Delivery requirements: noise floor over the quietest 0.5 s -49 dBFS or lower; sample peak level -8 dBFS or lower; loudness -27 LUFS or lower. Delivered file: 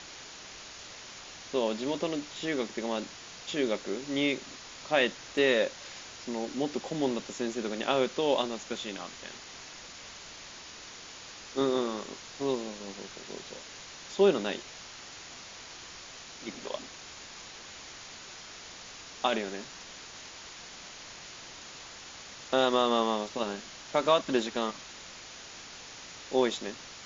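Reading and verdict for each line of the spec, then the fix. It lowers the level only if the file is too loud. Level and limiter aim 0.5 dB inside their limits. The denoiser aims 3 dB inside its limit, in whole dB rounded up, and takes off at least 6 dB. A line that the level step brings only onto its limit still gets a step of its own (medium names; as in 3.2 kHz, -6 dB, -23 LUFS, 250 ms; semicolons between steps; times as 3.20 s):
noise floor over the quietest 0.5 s -47 dBFS: fail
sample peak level -11.5 dBFS: pass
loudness -31.0 LUFS: pass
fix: noise reduction 6 dB, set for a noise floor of -47 dBFS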